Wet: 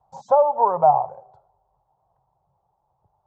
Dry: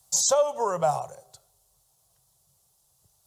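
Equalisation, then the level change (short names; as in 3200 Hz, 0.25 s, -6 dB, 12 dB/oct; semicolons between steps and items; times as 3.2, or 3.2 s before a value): synth low-pass 870 Hz, resonance Q 4.9; 0.0 dB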